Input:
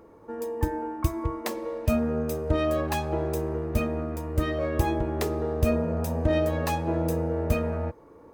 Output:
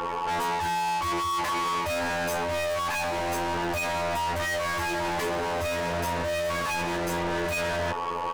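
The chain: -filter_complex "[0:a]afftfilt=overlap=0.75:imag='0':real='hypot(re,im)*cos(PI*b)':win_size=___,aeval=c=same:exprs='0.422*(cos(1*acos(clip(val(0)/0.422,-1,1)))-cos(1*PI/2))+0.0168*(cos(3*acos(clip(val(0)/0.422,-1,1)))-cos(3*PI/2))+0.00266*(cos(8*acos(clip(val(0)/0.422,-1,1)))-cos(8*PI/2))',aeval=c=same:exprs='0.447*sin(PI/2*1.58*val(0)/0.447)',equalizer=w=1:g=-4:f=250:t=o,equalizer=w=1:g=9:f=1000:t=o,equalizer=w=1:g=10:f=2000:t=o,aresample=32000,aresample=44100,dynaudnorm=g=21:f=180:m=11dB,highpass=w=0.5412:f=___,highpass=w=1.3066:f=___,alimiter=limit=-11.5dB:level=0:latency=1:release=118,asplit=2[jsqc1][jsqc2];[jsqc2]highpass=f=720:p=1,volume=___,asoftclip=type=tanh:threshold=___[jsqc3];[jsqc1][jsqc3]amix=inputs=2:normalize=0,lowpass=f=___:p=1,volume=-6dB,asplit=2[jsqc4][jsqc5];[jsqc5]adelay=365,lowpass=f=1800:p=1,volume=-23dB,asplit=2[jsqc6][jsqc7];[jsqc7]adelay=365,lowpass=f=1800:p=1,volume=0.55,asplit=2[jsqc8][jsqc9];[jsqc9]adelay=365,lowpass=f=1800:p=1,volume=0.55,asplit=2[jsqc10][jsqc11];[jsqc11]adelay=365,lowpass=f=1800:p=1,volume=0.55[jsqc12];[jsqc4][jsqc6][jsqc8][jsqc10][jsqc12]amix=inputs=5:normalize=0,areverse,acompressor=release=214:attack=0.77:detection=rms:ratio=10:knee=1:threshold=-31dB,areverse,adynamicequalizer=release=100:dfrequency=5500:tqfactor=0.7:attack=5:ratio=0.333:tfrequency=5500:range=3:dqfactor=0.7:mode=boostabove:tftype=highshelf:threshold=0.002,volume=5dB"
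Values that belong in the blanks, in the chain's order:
2048, 49, 49, 36dB, -11.5dB, 3400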